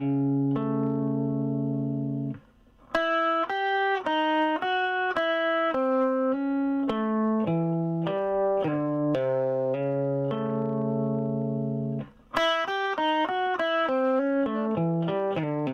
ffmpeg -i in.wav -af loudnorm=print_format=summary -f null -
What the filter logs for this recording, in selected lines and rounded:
Input Integrated:    -26.6 LUFS
Input True Peak:     -13.6 dBTP
Input LRA:             2.1 LU
Input Threshold:     -36.6 LUFS